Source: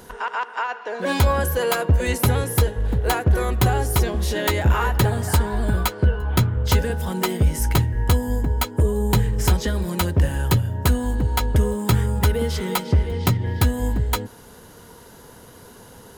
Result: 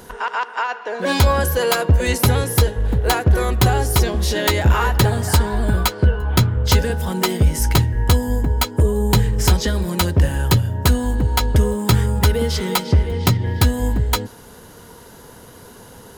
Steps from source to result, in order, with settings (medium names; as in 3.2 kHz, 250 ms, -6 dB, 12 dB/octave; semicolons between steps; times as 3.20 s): dynamic bell 4.9 kHz, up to +5 dB, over -42 dBFS, Q 1.3; trim +3 dB